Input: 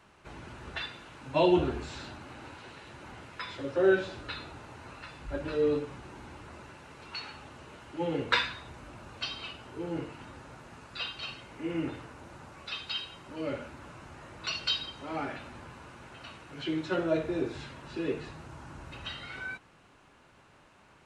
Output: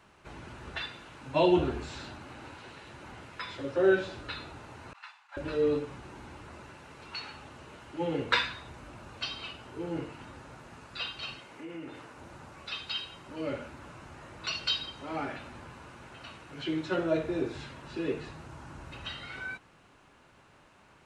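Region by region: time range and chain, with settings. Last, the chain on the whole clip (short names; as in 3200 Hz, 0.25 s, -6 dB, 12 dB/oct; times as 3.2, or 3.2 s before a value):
4.93–5.37 steep high-pass 790 Hz 48 dB/oct + air absorption 58 m + expander -47 dBFS
11.39–12.17 HPF 260 Hz 6 dB/oct + compressor 2.5:1, threshold -41 dBFS
whole clip: dry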